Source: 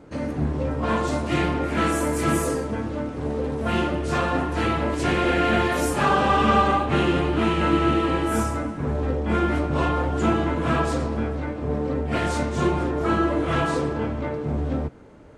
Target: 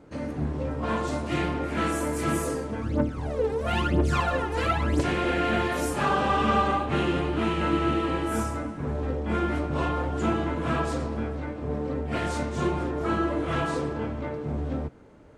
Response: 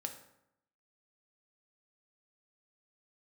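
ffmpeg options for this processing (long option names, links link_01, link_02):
-filter_complex "[0:a]asplit=3[link_01][link_02][link_03];[link_01]afade=type=out:start_time=2.81:duration=0.02[link_04];[link_02]aphaser=in_gain=1:out_gain=1:delay=2.5:decay=0.72:speed=1:type=triangular,afade=type=in:start_time=2.81:duration=0.02,afade=type=out:start_time=5:duration=0.02[link_05];[link_03]afade=type=in:start_time=5:duration=0.02[link_06];[link_04][link_05][link_06]amix=inputs=3:normalize=0,volume=-4.5dB"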